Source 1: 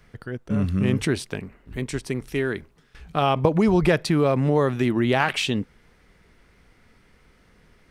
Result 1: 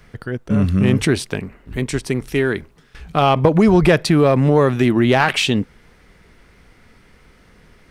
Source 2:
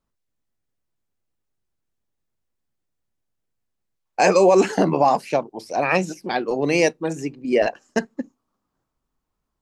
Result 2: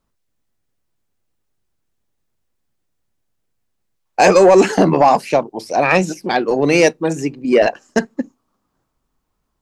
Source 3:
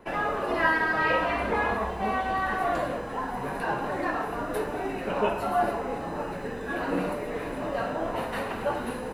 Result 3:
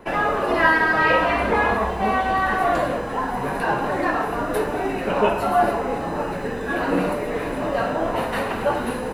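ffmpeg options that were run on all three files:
-af "asoftclip=type=tanh:threshold=-8.5dB,volume=7dB"

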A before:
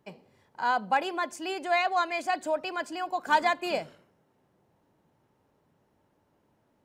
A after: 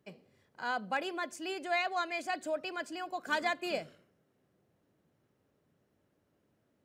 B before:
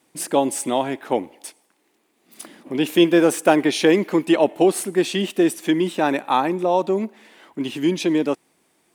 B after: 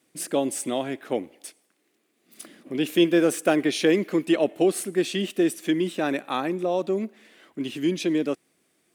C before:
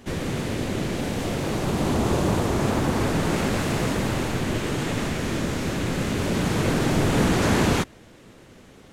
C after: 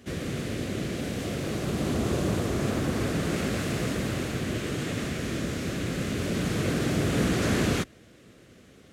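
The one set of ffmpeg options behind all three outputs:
-af "highpass=46,equalizer=f=900:w=3.4:g=-11,volume=-4dB"

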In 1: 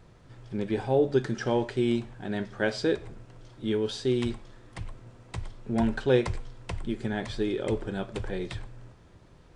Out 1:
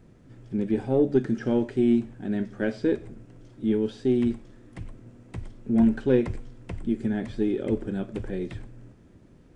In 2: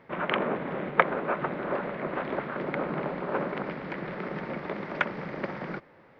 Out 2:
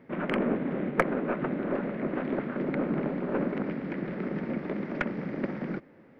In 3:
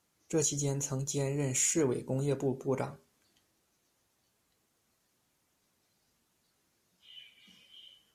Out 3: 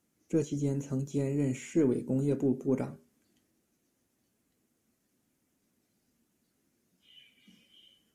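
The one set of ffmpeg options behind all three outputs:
-filter_complex "[0:a]acrossover=split=3500[a][b];[b]acompressor=threshold=-49dB:ratio=4:attack=1:release=60[c];[a][c]amix=inputs=2:normalize=0,aeval=exprs='0.708*(cos(1*acos(clip(val(0)/0.708,-1,1)))-cos(1*PI/2))+0.0251*(cos(8*acos(clip(val(0)/0.708,-1,1)))-cos(8*PI/2))':c=same,equalizer=f=250:t=o:w=1:g=10,equalizer=f=1k:t=o:w=1:g=-6,equalizer=f=4k:t=o:w=1:g=-6,volume=-1.5dB"

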